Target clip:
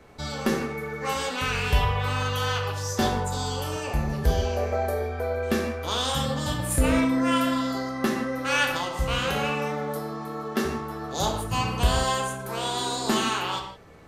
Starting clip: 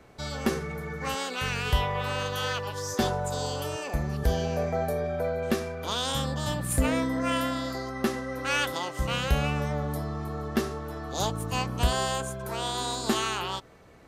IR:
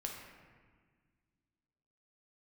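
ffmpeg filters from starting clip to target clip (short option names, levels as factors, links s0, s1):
-filter_complex "[0:a]asettb=1/sr,asplit=3[s0][s1][s2];[s0]atrim=end=9.254[s3];[s1]atrim=start=9.25:end=10.65,asetpts=PTS-STARTPTS,afade=t=in:d=0.004:c=qsin,afade=t=out:st=1.396:d=0.004:c=qsin,highpass=210[s4];[s2]atrim=start=10.646[s5];[s3][s4]acrossfade=d=0.004:c1=hsin:c2=qsin[s6];[s6][s5]acrossfade=d=0.004:c1=qsin:c2=hsin[s7];[1:a]atrim=start_sample=2205,afade=t=out:st=0.23:d=0.01,atrim=end_sample=10584[s8];[s7][s8]afir=irnorm=-1:irlink=0,volume=1.68"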